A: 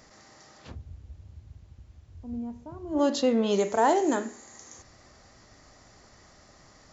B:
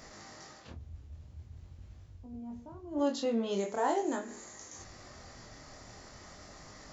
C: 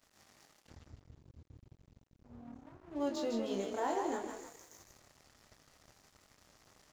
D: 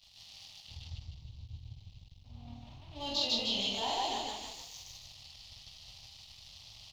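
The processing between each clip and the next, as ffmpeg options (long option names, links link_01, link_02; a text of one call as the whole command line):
ffmpeg -i in.wav -af "areverse,acompressor=mode=upward:threshold=-31dB:ratio=2.5,areverse,flanger=delay=19.5:depth=6.6:speed=0.44,volume=-5dB" out.wav
ffmpeg -i in.wav -filter_complex "[0:a]asplit=7[link_01][link_02][link_03][link_04][link_05][link_06][link_07];[link_02]adelay=155,afreqshift=36,volume=-5dB[link_08];[link_03]adelay=310,afreqshift=72,volume=-11.9dB[link_09];[link_04]adelay=465,afreqshift=108,volume=-18.9dB[link_10];[link_05]adelay=620,afreqshift=144,volume=-25.8dB[link_11];[link_06]adelay=775,afreqshift=180,volume=-32.7dB[link_12];[link_07]adelay=930,afreqshift=216,volume=-39.7dB[link_13];[link_01][link_08][link_09][link_10][link_11][link_12][link_13]amix=inputs=7:normalize=0,aeval=exprs='sgn(val(0))*max(abs(val(0))-0.00398,0)':channel_layout=same,volume=-5dB" out.wav
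ffmpeg -i in.wav -filter_complex "[0:a]firequalizer=gain_entry='entry(110,0);entry(160,-9);entry(340,-24);entry(790,-8);entry(1500,-21);entry(2900,8);entry(4200,9);entry(7200,-9)':delay=0.05:min_phase=1,asplit=2[link_01][link_02];[link_02]aecho=0:1:46.65|148.7:0.708|1[link_03];[link_01][link_03]amix=inputs=2:normalize=0,volume=8dB" out.wav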